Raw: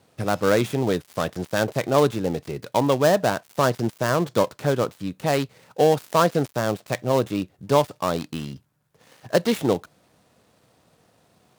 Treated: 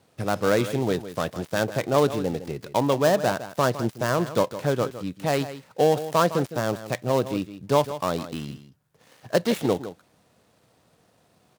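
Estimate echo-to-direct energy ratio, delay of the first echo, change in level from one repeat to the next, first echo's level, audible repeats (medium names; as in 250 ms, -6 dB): -13.0 dB, 159 ms, no regular repeats, -13.0 dB, 1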